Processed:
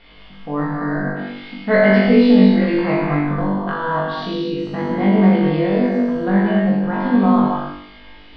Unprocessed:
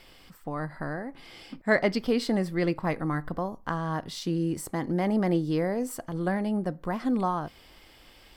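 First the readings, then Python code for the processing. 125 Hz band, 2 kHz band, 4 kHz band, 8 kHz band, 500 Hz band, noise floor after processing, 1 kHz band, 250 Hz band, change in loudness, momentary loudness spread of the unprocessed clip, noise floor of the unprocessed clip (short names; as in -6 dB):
+11.0 dB, +10.5 dB, +8.5 dB, under -15 dB, +11.0 dB, -41 dBFS, +10.0 dB, +13.5 dB, +12.5 dB, 10 LU, -55 dBFS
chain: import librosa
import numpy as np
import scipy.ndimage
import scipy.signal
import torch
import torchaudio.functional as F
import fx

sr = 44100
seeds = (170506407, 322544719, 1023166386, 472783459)

p1 = scipy.signal.sosfilt(scipy.signal.butter(6, 4000.0, 'lowpass', fs=sr, output='sos'), x)
p2 = p1 + 0.33 * np.pad(p1, (int(4.3 * sr / 1000.0), 0))[:len(p1)]
p3 = p2 + fx.room_flutter(p2, sr, wall_m=3.5, rt60_s=0.73, dry=0)
p4 = fx.rev_gated(p3, sr, seeds[0], gate_ms=300, shape='flat', drr_db=-1.5)
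y = F.gain(torch.from_numpy(p4), 2.0).numpy()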